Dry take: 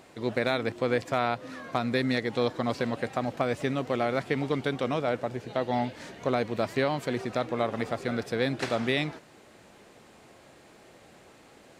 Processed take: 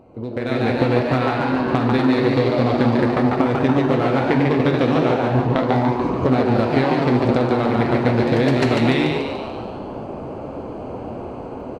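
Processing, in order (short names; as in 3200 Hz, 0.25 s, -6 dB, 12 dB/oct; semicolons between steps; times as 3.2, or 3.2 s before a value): Wiener smoothing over 25 samples; on a send at -4.5 dB: reverb, pre-delay 3 ms; on the sum: compressor 12:1, threshold -35 dBFS, peak gain reduction 17 dB; tilt -1.5 dB/oct; frequency-shifting echo 0.145 s, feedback 53%, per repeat +120 Hz, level -4 dB; echoes that change speed 0.34 s, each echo +1 st, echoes 3, each echo -6 dB; AGC gain up to 15.5 dB; dynamic EQ 620 Hz, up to -5 dB, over -31 dBFS, Q 1.3; gain +4 dB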